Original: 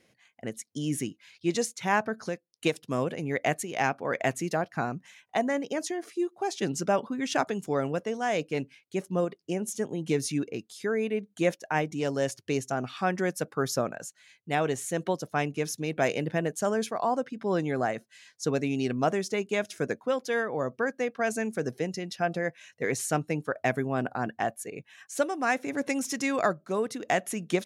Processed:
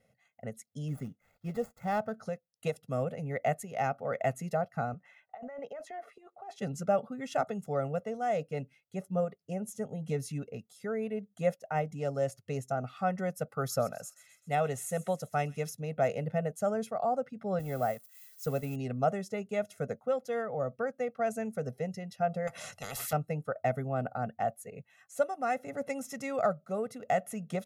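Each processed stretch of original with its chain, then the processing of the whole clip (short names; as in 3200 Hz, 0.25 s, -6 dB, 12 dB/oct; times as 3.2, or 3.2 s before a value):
0.88–2.2 median filter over 15 samples + notch 4000 Hz, Q 20
4.94–6.56 three-band isolator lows -14 dB, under 440 Hz, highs -18 dB, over 3000 Hz + negative-ratio compressor -38 dBFS
13.49–15.7 high shelf 2100 Hz +6.5 dB + thin delay 0.129 s, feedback 58%, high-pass 3300 Hz, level -14 dB
17.59–18.76 switching spikes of -29 dBFS + expander -29 dBFS
22.47–23.13 LPF 12000 Hz 24 dB/oct + spectral compressor 10:1
whole clip: bell 4300 Hz -12 dB 2.9 oct; comb 1.5 ms, depth 98%; gain -4.5 dB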